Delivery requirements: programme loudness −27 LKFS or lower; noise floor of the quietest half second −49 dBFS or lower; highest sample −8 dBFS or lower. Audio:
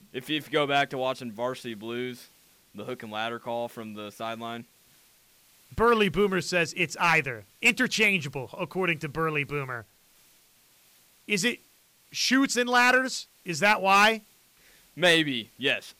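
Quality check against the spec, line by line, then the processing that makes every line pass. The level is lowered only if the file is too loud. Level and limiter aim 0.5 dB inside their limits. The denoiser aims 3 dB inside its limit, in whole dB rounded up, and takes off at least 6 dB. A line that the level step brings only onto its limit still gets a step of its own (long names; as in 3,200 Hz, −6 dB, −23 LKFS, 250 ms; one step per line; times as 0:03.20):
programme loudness −25.5 LKFS: out of spec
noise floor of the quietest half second −61 dBFS: in spec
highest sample −11.5 dBFS: in spec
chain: level −2 dB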